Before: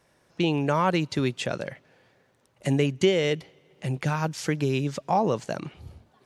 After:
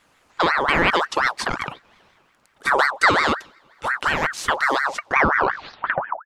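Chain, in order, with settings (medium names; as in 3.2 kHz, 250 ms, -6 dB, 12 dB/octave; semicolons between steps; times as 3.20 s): tape stop on the ending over 1.40 s; ring modulator with a swept carrier 1.2 kHz, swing 45%, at 5.6 Hz; trim +7.5 dB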